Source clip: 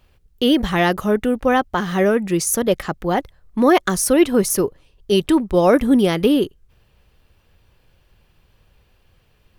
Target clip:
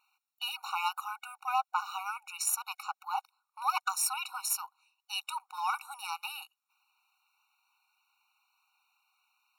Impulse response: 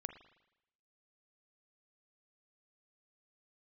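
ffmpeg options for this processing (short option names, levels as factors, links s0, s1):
-af "equalizer=f=270:t=o:w=2:g=-7.5,aeval=exprs='0.501*(cos(1*acos(clip(val(0)/0.501,-1,1)))-cos(1*PI/2))+0.0398*(cos(4*acos(clip(val(0)/0.501,-1,1)))-cos(4*PI/2))':c=same,afftfilt=real='re*eq(mod(floor(b*sr/1024/740),2),1)':imag='im*eq(mod(floor(b*sr/1024/740),2),1)':win_size=1024:overlap=0.75,volume=0.501"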